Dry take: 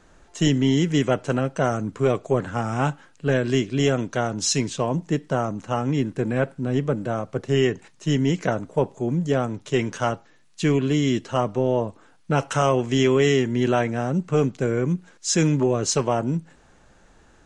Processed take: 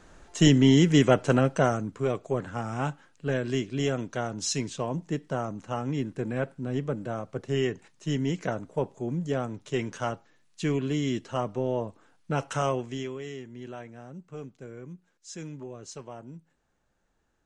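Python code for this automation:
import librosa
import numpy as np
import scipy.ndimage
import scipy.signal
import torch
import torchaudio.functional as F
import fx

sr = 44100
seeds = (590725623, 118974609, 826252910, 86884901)

y = fx.gain(x, sr, db=fx.line((1.53, 1.0), (1.94, -7.0), (12.69, -7.0), (13.2, -20.0)))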